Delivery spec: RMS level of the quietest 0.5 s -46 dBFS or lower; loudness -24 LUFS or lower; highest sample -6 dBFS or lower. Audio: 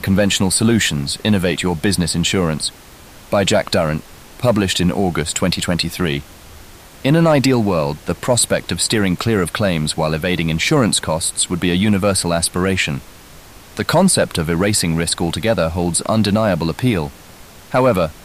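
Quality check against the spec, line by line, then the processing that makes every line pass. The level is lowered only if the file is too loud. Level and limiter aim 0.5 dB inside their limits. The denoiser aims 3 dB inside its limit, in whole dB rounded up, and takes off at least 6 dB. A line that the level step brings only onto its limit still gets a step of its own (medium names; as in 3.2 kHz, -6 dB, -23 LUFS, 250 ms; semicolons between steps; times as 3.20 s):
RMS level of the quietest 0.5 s -40 dBFS: fail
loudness -17.0 LUFS: fail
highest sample -5.0 dBFS: fail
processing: trim -7.5 dB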